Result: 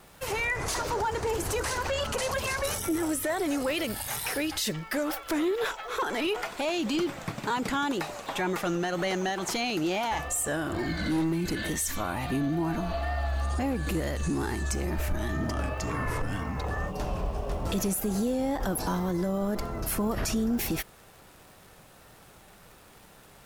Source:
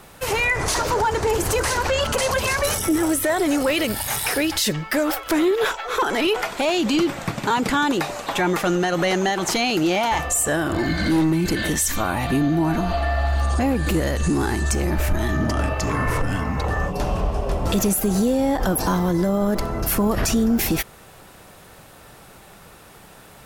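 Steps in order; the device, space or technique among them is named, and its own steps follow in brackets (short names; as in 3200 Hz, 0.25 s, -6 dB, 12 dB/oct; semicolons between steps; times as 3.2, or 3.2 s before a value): vinyl LP (wow and flutter; crackle 100/s -35 dBFS; pink noise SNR 33 dB); gain -8.5 dB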